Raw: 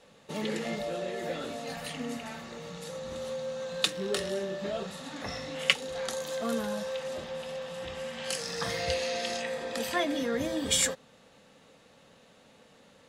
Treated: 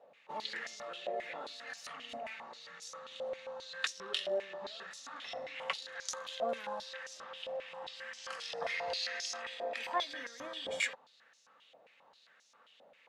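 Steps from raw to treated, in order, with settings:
band-pass on a step sequencer 7.5 Hz 670–5,800 Hz
level +5.5 dB

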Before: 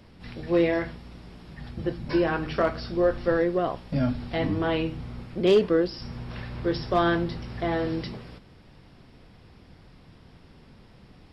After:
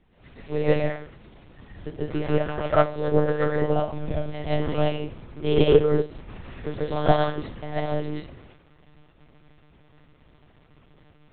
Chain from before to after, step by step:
dynamic equaliser 1,400 Hz, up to −5 dB, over −42 dBFS, Q 1.3
convolution reverb RT60 0.50 s, pre-delay 95 ms, DRR −6 dB
one-pitch LPC vocoder at 8 kHz 150 Hz
expander for the loud parts 1.5 to 1, over −31 dBFS

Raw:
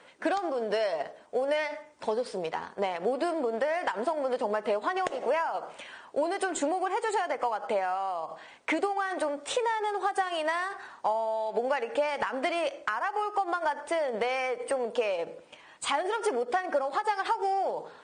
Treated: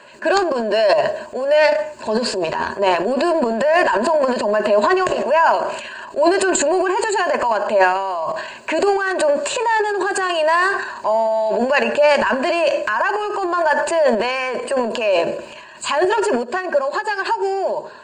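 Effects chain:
EQ curve with evenly spaced ripples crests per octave 1.4, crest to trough 13 dB
transient designer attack −4 dB, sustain +11 dB, from 0:16.42 sustain 0 dB
level +9 dB

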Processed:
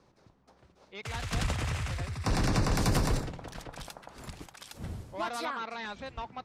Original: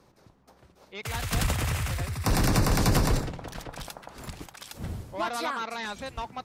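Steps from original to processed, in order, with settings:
low-pass filter 7,200 Hz 12 dB per octave, from 0:02.77 12,000 Hz, from 0:05.45 4,500 Hz
level −4 dB

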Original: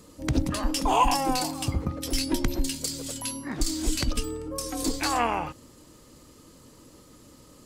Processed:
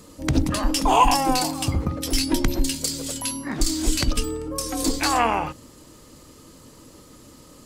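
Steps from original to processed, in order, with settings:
mains-hum notches 60/120/180/240/300/360/420/480/540 Hz
level +5 dB

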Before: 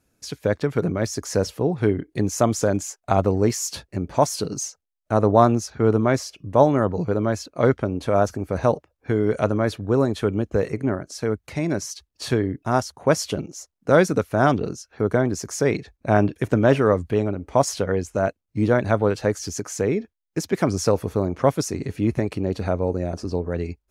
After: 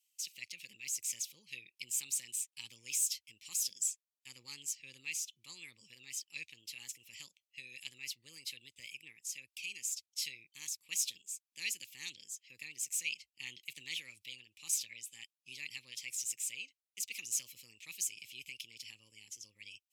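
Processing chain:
elliptic high-pass filter 2,000 Hz, stop band 40 dB
speed change +20%
level −3.5 dB

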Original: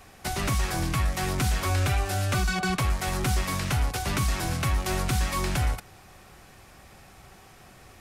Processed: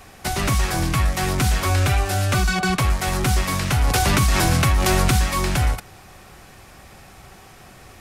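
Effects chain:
0:03.84–0:05.21: envelope flattener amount 70%
level +6 dB

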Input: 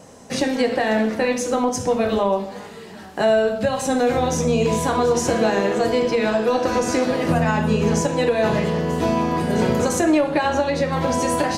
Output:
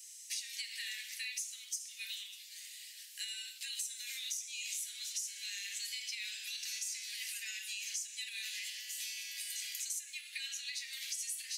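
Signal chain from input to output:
Butterworth high-pass 2,000 Hz 48 dB per octave
first difference
downward compressor 8 to 1, threshold −40 dBFS, peak gain reduction 16 dB
level +2.5 dB

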